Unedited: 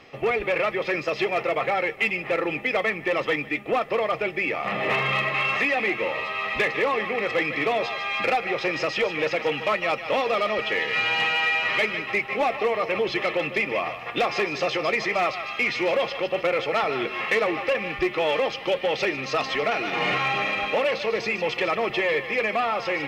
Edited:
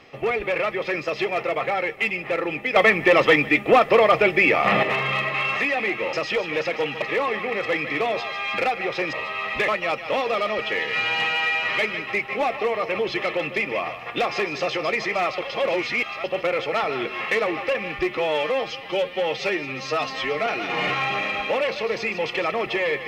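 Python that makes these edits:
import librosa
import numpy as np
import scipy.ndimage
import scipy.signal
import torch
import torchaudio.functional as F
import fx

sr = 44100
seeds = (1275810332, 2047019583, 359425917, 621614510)

y = fx.edit(x, sr, fx.clip_gain(start_s=2.76, length_s=2.07, db=8.5),
    fx.swap(start_s=6.13, length_s=0.55, other_s=8.79, other_length_s=0.89),
    fx.reverse_span(start_s=15.38, length_s=0.86),
    fx.stretch_span(start_s=18.17, length_s=1.53, factor=1.5), tone=tone)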